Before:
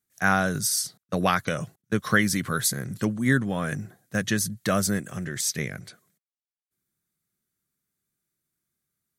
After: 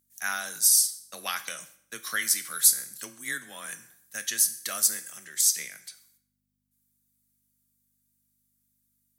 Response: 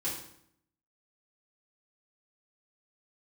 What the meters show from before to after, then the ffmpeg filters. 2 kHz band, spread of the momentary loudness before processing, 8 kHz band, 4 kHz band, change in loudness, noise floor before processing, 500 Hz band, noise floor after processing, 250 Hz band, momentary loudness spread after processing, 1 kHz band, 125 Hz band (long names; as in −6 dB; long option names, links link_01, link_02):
−7.0 dB, 9 LU, +6.0 dB, +1.0 dB, +1.5 dB, below −85 dBFS, −18.0 dB, −78 dBFS, −25.0 dB, 19 LU, −11.0 dB, below −30 dB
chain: -filter_complex "[0:a]afreqshift=17,aeval=exprs='val(0)+0.00501*(sin(2*PI*50*n/s)+sin(2*PI*2*50*n/s)/2+sin(2*PI*3*50*n/s)/3+sin(2*PI*4*50*n/s)/4+sin(2*PI*5*50*n/s)/5)':channel_layout=same,aderivative,asplit=2[link_01][link_02];[1:a]atrim=start_sample=2205,lowshelf=frequency=450:gain=-11.5[link_03];[link_02][link_03]afir=irnorm=-1:irlink=0,volume=-10dB[link_04];[link_01][link_04]amix=inputs=2:normalize=0,volume=3.5dB"